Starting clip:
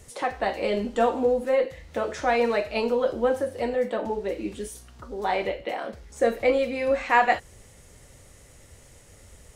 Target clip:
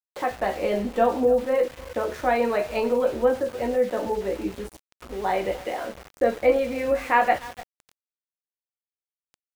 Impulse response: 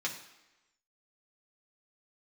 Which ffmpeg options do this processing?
-filter_complex "[0:a]aemphasis=mode=reproduction:type=75fm,asplit=2[link_01][link_02];[link_02]adelay=16,volume=-8dB[link_03];[link_01][link_03]amix=inputs=2:normalize=0,asplit=2[link_04][link_05];[link_05]aecho=0:1:294|588:0.119|0.0285[link_06];[link_04][link_06]amix=inputs=2:normalize=0,aeval=exprs='val(0)*gte(abs(val(0)),0.0141)':channel_layout=same"

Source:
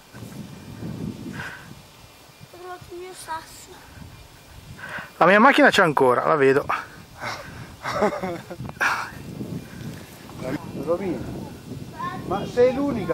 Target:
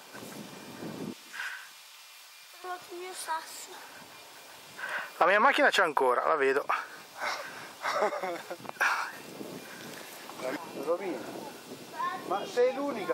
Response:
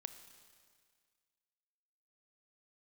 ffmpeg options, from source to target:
-af "asetnsamples=nb_out_samples=441:pad=0,asendcmd='1.13 highpass f 1300;2.64 highpass f 450',highpass=320,acompressor=threshold=-33dB:ratio=1.5"

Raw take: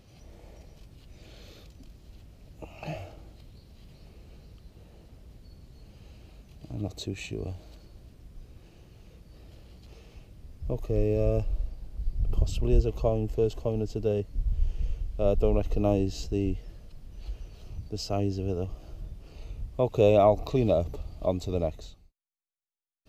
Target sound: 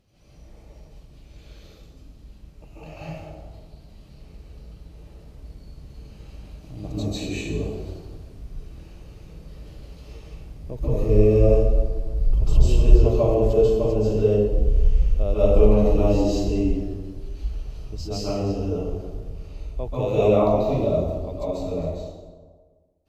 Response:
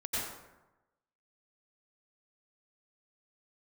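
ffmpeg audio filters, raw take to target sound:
-filter_complex "[0:a]dynaudnorm=framelen=480:gausssize=21:maxgain=7dB[link_01];[1:a]atrim=start_sample=2205,asetrate=28665,aresample=44100[link_02];[link_01][link_02]afir=irnorm=-1:irlink=0,volume=-7.5dB"

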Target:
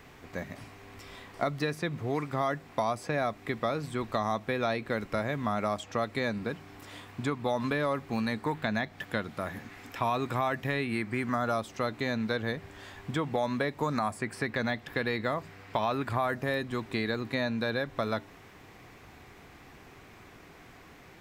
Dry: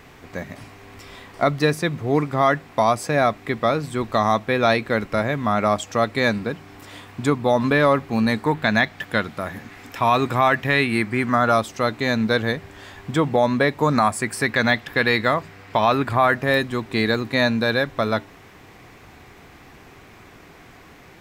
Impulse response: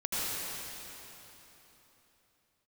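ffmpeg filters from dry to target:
-filter_complex "[0:a]acrossover=split=890|4500[link_01][link_02][link_03];[link_01]acompressor=threshold=-23dB:ratio=4[link_04];[link_02]acompressor=threshold=-28dB:ratio=4[link_05];[link_03]acompressor=threshold=-45dB:ratio=4[link_06];[link_04][link_05][link_06]amix=inputs=3:normalize=0,volume=-6dB"

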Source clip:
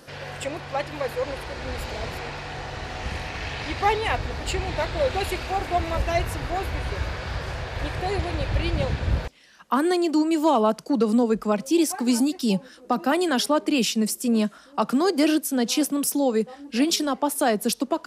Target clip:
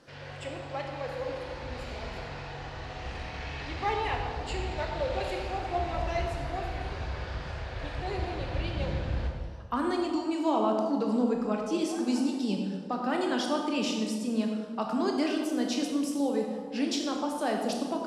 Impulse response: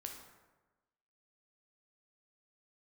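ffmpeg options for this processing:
-filter_complex "[0:a]lowpass=6400[link_01];[1:a]atrim=start_sample=2205,asetrate=27783,aresample=44100[link_02];[link_01][link_02]afir=irnorm=-1:irlink=0,volume=-6.5dB"

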